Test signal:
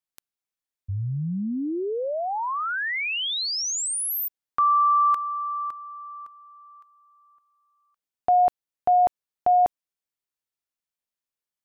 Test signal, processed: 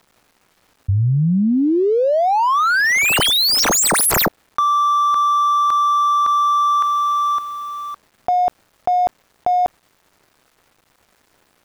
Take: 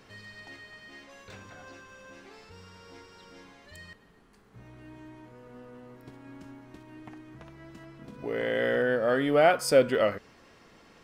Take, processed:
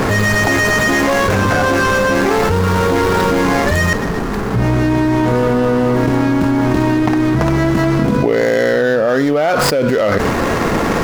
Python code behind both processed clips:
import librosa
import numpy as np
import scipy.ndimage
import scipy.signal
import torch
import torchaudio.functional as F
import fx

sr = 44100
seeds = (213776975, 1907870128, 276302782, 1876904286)

y = scipy.ndimage.median_filter(x, 15, mode='constant')
y = fx.env_flatten(y, sr, amount_pct=100)
y = F.gain(torch.from_numpy(y), 2.0).numpy()